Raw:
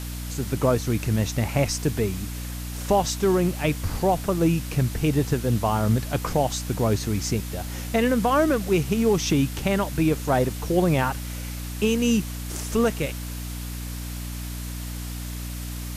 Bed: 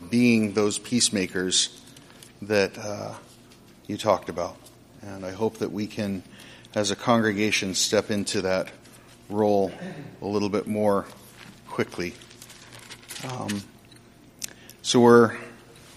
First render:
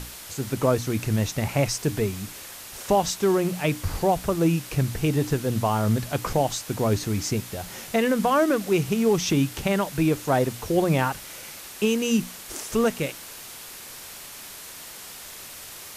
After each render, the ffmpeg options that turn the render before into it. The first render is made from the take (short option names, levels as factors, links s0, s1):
-af "bandreject=f=60:t=h:w=6,bandreject=f=120:t=h:w=6,bandreject=f=180:t=h:w=6,bandreject=f=240:t=h:w=6,bandreject=f=300:t=h:w=6"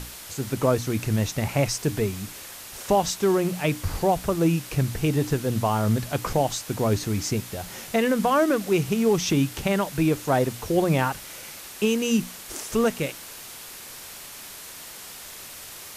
-af anull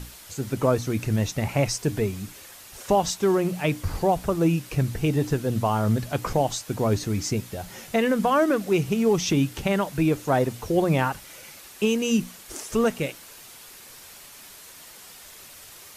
-af "afftdn=nr=6:nf=-41"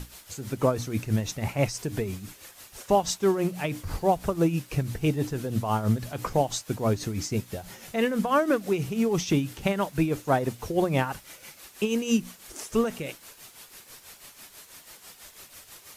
-af "tremolo=f=6.1:d=0.64,acrusher=bits=10:mix=0:aa=0.000001"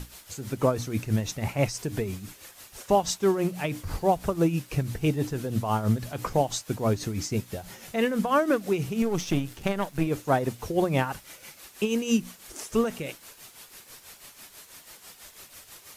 -filter_complex "[0:a]asettb=1/sr,asplit=3[s0][s1][s2];[s0]atrim=end=9.024[s3];[s1]atrim=start=9.02:end=10.07,asetpts=PTS-STARTPTS,afade=t=in:d=0.004:c=qsin,afade=t=out:st=1.046:d=0.004:c=qsin,aeval=exprs='if(lt(val(0),0),0.447*val(0),val(0))':c=same[s4];[s2]atrim=start=10.066[s5];[s3][s4]acrossfade=d=0.004:c1=hsin:c2=qsin[s6];[s6][s5]acrossfade=d=0.004:c1=qsin:c2=hsin"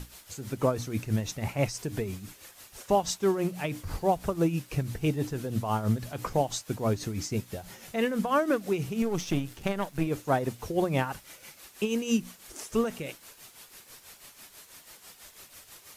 -af "volume=0.75"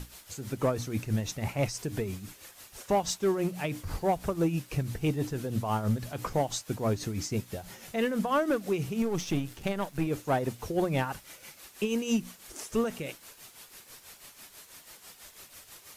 -af "asoftclip=type=tanh:threshold=0.133"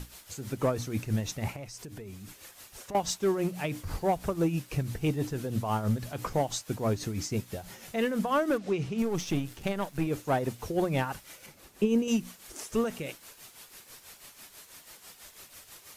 -filter_complex "[0:a]asettb=1/sr,asplit=3[s0][s1][s2];[s0]atrim=end=1.564[s3];[s1]atrim=start=1.56:end=2.95,asetpts=PTS-STARTPTS,afade=t=in:d=0.004:c=qsin,afade=t=out:st=1.386:d=0.004:c=qsin,acompressor=threshold=0.00891:ratio=4:attack=3.2:release=140:knee=1:detection=peak[s4];[s2]atrim=start=2.946[s5];[s3][s4]acrossfade=d=0.004:c1=hsin:c2=qsin[s6];[s6][s5]acrossfade=d=0.004:c1=qsin:c2=hsin,asplit=3[s7][s8][s9];[s7]afade=t=out:st=8.57:d=0.02[s10];[s8]lowpass=5800,afade=t=in:st=8.57:d=0.02,afade=t=out:st=8.97:d=0.02[s11];[s9]afade=t=in:st=8.97:d=0.02[s12];[s10][s11][s12]amix=inputs=3:normalize=0,asettb=1/sr,asplit=3[s13][s14][s15];[s13]atrim=end=11.464[s16];[s14]atrim=start=11.46:end=12.08,asetpts=PTS-STARTPTS,afade=t=in:d=0.004:c=qsin,afade=t=out:st=0.616:d=0.004:c=qsin,tiltshelf=f=810:g=6.5[s17];[s15]atrim=start=12.076[s18];[s16][s17]acrossfade=d=0.004:c1=hsin:c2=qsin[s19];[s19][s18]acrossfade=d=0.004:c1=qsin:c2=hsin"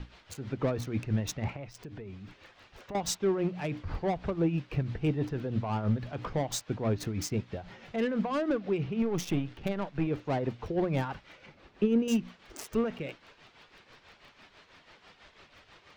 -filter_complex "[0:a]acrossover=split=450|4000[s0][s1][s2];[s1]asoftclip=type=tanh:threshold=0.0299[s3];[s2]acrusher=bits=5:mix=0:aa=0.5[s4];[s0][s3][s4]amix=inputs=3:normalize=0"